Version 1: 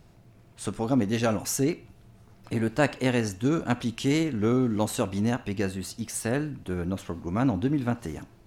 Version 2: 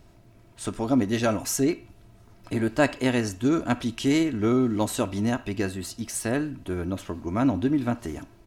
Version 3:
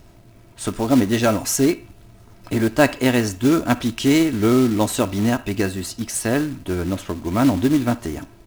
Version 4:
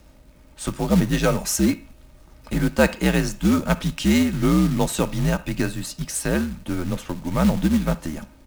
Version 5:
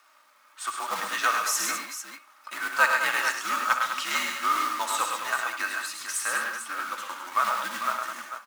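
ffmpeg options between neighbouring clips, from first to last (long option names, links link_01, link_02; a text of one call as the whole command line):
ffmpeg -i in.wav -af "aecho=1:1:3.1:0.38,volume=1dB" out.wav
ffmpeg -i in.wav -af "acrusher=bits=4:mode=log:mix=0:aa=0.000001,volume=6dB" out.wav
ffmpeg -i in.wav -af "afreqshift=-72,volume=-2dB" out.wav
ffmpeg -i in.wav -filter_complex "[0:a]highpass=frequency=1200:width_type=q:width=4,flanger=delay=2.7:depth=1.1:regen=-31:speed=1.5:shape=sinusoidal,asplit=2[link_01][link_02];[link_02]aecho=0:1:63|105|130|203|446:0.282|0.501|0.376|0.355|0.335[link_03];[link_01][link_03]amix=inputs=2:normalize=0" out.wav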